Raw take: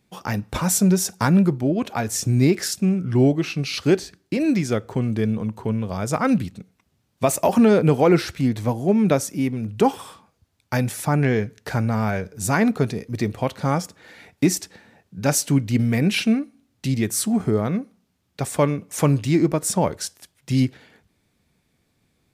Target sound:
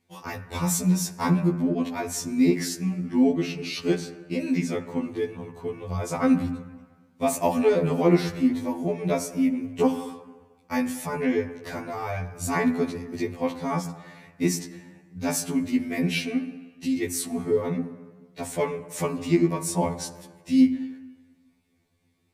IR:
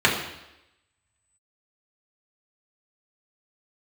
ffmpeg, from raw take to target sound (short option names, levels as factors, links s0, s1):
-filter_complex "[0:a]asettb=1/sr,asplit=3[s0][s1][s2];[s0]atrim=end=9.234[s3];[s1]atrim=start=9.23:end=11.12,asetpts=PTS-STARTPTS,afade=t=in:d=0.004:c=qsin,afade=t=out:st=1.886:d=0.004:c=qsin,bandreject=f=3900:w=13[s4];[s2]atrim=start=11.116[s5];[s3][s4]acrossfade=d=0.004:c1=hsin:c2=qsin[s6];[s6][s5]acrossfade=d=0.004:c1=qsin:c2=hsin,asplit=2[s7][s8];[1:a]atrim=start_sample=2205,asetrate=27783,aresample=44100[s9];[s8][s9]afir=irnorm=-1:irlink=0,volume=0.0376[s10];[s7][s10]amix=inputs=2:normalize=0,afftfilt=real='re*2*eq(mod(b,4),0)':imag='im*2*eq(mod(b,4),0)':win_size=2048:overlap=0.75,volume=0.668"